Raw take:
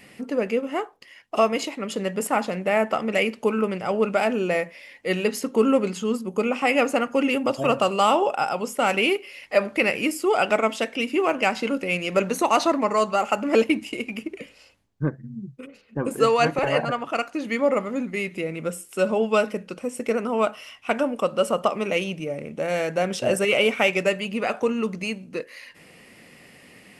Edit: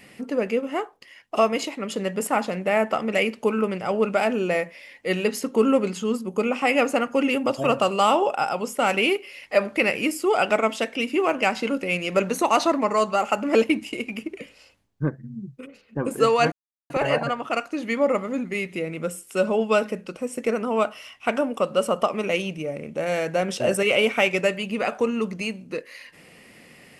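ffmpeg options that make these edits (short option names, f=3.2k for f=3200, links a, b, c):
-filter_complex "[0:a]asplit=2[a][b];[a]atrim=end=16.52,asetpts=PTS-STARTPTS,afade=t=out:st=16.516:d=0.004:c=hsin,apad=pad_dur=0.38[c];[b]atrim=start=16.52,asetpts=PTS-STARTPTS,afade=t=in:d=0.004:c=hsin[d];[c][d]concat=n=2:v=0:a=1"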